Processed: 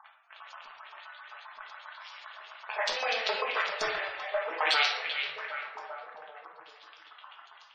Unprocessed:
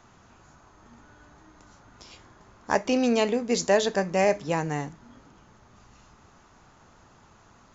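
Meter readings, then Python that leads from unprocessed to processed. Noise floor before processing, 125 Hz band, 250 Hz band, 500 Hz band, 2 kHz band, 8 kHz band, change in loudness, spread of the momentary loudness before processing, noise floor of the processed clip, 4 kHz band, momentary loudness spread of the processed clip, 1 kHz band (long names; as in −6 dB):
−57 dBFS, below −30 dB, −29.0 dB, −10.5 dB, +3.5 dB, can't be measured, −5.5 dB, 8 LU, −56 dBFS, +5.0 dB, 21 LU, −2.0 dB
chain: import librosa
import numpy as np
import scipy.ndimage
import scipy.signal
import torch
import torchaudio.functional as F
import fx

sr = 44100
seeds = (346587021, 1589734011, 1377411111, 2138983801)

y = fx.tracing_dist(x, sr, depth_ms=0.29)
y = scipy.signal.sosfilt(scipy.signal.butter(4, 530.0, 'highpass', fs=sr, output='sos'), y)
y = fx.high_shelf(y, sr, hz=3700.0, db=-10.5)
y = fx.level_steps(y, sr, step_db=15)
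y = fx.leveller(y, sr, passes=3)
y = fx.over_compress(y, sr, threshold_db=-31.0, ratio=-0.5)
y = (np.mod(10.0 ** (20.0 / 20.0) * y + 1.0, 2.0) - 1.0) / 10.0 ** (20.0 / 20.0)
y = fx.filter_lfo_bandpass(y, sr, shape='saw_up', hz=7.6, low_hz=990.0, high_hz=5300.0, q=2.6)
y = fx.room_shoebox(y, sr, seeds[0], volume_m3=240.0, walls='mixed', distance_m=1.5)
y = fx.spec_gate(y, sr, threshold_db=-20, keep='strong')
y = fx.echo_stepped(y, sr, ms=388, hz=2500.0, octaves=-0.7, feedback_pct=70, wet_db=-5.0)
y = F.gain(torch.from_numpy(y), 9.0).numpy()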